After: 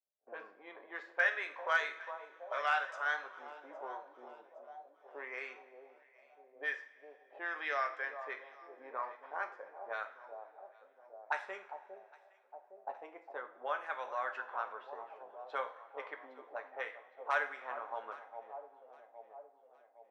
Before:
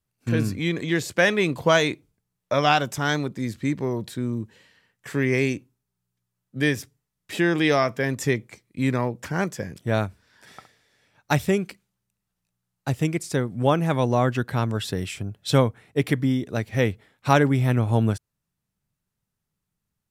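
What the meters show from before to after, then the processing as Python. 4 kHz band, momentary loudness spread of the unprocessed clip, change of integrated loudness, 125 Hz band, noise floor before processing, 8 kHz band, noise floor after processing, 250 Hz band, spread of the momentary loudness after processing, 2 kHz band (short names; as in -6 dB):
-20.5 dB, 12 LU, -15.5 dB, under -40 dB, -82 dBFS, under -25 dB, -66 dBFS, -38.0 dB, 22 LU, -9.0 dB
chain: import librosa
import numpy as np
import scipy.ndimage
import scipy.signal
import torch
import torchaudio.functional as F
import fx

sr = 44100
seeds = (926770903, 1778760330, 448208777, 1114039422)

p1 = fx.ladder_highpass(x, sr, hz=430.0, resonance_pct=30)
p2 = (np.mod(10.0 ** (12.5 / 20.0) * p1 + 1.0, 2.0) - 1.0) / 10.0 ** (12.5 / 20.0)
p3 = p1 + (p2 * 10.0 ** (-9.0 / 20.0))
p4 = fx.high_shelf(p3, sr, hz=5200.0, db=4.5)
p5 = fx.env_lowpass(p4, sr, base_hz=590.0, full_db=-22.5)
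p6 = scipy.signal.sosfilt(scipy.signal.butter(2, 8800.0, 'lowpass', fs=sr, output='sos'), p5)
p7 = fx.echo_alternate(p6, sr, ms=406, hz=1200.0, feedback_pct=69, wet_db=-12.5)
p8 = fx.auto_wah(p7, sr, base_hz=660.0, top_hz=1500.0, q=2.6, full_db=-24.0, direction='up')
p9 = fx.rev_double_slope(p8, sr, seeds[0], early_s=0.41, late_s=2.6, knee_db=-20, drr_db=5.0)
y = p9 * 10.0 ** (-3.5 / 20.0)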